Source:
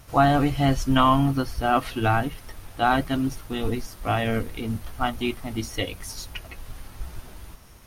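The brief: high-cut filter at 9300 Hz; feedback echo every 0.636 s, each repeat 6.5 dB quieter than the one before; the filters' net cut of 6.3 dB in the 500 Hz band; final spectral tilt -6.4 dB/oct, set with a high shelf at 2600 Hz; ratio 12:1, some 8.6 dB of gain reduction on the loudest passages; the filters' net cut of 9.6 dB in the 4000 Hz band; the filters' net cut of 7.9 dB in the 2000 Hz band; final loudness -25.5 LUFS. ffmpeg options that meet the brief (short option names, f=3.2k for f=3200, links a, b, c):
-af "lowpass=9.3k,equalizer=f=500:t=o:g=-8.5,equalizer=f=2k:t=o:g=-7,highshelf=f=2.6k:g=-7.5,equalizer=f=4k:t=o:g=-3.5,acompressor=threshold=-25dB:ratio=12,aecho=1:1:636|1272|1908|2544|3180|3816:0.473|0.222|0.105|0.0491|0.0231|0.0109,volume=7dB"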